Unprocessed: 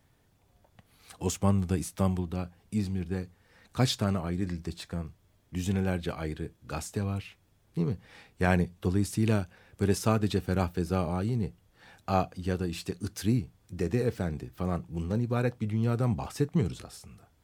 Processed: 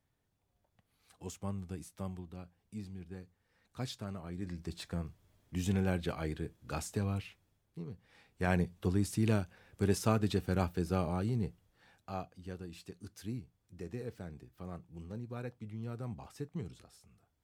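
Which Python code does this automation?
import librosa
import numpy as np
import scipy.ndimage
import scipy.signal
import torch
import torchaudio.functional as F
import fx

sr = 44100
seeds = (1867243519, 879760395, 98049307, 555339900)

y = fx.gain(x, sr, db=fx.line((4.12, -14.0), (4.83, -3.0), (7.24, -3.0), (7.84, -15.5), (8.65, -4.0), (11.47, -4.0), (12.14, -14.0)))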